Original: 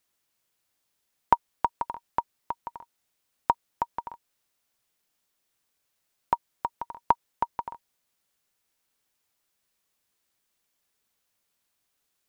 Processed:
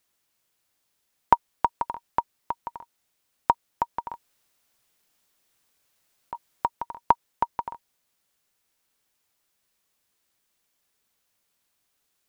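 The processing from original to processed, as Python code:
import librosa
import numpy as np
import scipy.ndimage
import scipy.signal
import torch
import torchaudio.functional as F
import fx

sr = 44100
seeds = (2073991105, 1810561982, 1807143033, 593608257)

y = fx.over_compress(x, sr, threshold_db=-27.0, ratio=-0.5, at=(4.11, 6.68))
y = y * librosa.db_to_amplitude(2.5)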